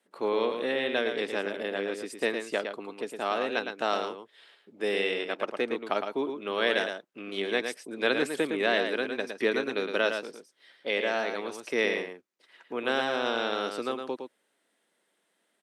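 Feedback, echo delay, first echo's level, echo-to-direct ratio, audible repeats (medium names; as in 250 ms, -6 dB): no regular repeats, 111 ms, -6.5 dB, -6.5 dB, 1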